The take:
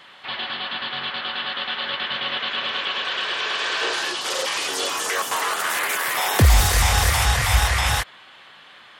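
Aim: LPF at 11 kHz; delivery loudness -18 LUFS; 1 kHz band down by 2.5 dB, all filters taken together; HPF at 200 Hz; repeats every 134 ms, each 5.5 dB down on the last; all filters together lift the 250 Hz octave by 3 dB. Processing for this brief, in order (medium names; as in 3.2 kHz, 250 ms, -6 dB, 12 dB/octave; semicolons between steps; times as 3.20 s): high-pass 200 Hz; low-pass 11 kHz; peaking EQ 250 Hz +7 dB; peaking EQ 1 kHz -3.5 dB; feedback delay 134 ms, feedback 53%, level -5.5 dB; trim +4 dB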